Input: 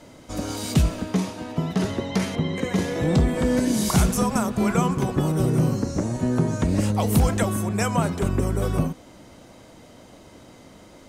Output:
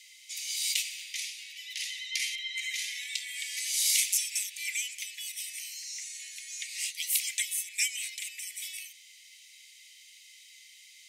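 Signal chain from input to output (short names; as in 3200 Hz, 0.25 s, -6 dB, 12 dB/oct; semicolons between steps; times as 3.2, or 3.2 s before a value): steep high-pass 2000 Hz 96 dB/oct; gain +3.5 dB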